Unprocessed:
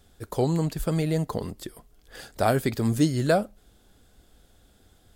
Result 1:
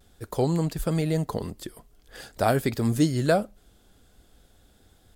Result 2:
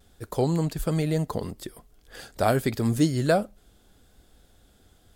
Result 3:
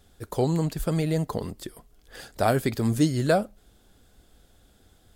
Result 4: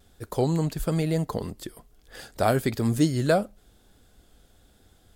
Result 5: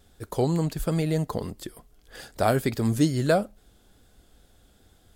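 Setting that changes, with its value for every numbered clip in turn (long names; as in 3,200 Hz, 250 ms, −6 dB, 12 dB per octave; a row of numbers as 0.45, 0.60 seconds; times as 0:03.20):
pitch vibrato, speed: 0.46, 0.75, 15, 1.1, 2.3 Hertz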